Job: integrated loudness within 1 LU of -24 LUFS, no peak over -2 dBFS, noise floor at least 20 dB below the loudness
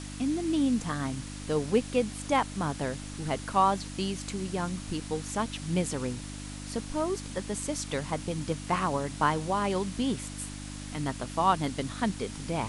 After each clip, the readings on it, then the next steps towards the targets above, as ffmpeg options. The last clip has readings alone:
hum 50 Hz; harmonics up to 300 Hz; hum level -38 dBFS; noise floor -40 dBFS; noise floor target -51 dBFS; loudness -31.0 LUFS; peak -11.5 dBFS; loudness target -24.0 LUFS
-> -af "bandreject=f=50:t=h:w=4,bandreject=f=100:t=h:w=4,bandreject=f=150:t=h:w=4,bandreject=f=200:t=h:w=4,bandreject=f=250:t=h:w=4,bandreject=f=300:t=h:w=4"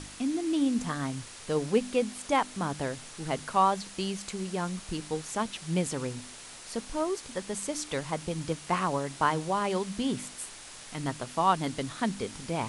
hum none; noise floor -46 dBFS; noise floor target -51 dBFS
-> -af "afftdn=nr=6:nf=-46"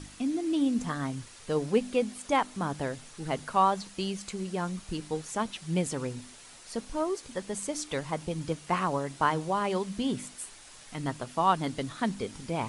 noise floor -51 dBFS; loudness -31.0 LUFS; peak -11.5 dBFS; loudness target -24.0 LUFS
-> -af "volume=7dB"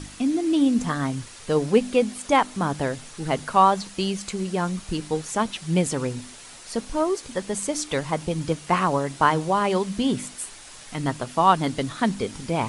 loudness -24.0 LUFS; peak -4.5 dBFS; noise floor -44 dBFS

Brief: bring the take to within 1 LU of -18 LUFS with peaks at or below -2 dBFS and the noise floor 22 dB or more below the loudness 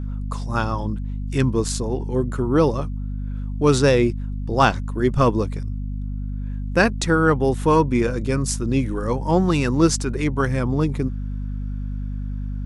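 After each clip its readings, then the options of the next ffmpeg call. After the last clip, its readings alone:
hum 50 Hz; harmonics up to 250 Hz; hum level -24 dBFS; loudness -22.0 LUFS; peak -1.5 dBFS; loudness target -18.0 LUFS
-> -af "bandreject=f=50:t=h:w=4,bandreject=f=100:t=h:w=4,bandreject=f=150:t=h:w=4,bandreject=f=200:t=h:w=4,bandreject=f=250:t=h:w=4"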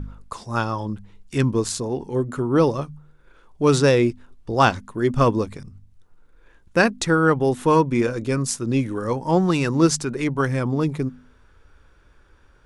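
hum none; loudness -21.5 LUFS; peak -1.5 dBFS; loudness target -18.0 LUFS
-> -af "volume=3.5dB,alimiter=limit=-2dB:level=0:latency=1"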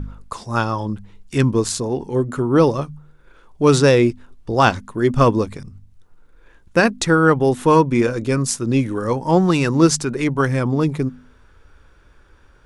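loudness -18.0 LUFS; peak -2.0 dBFS; noise floor -51 dBFS

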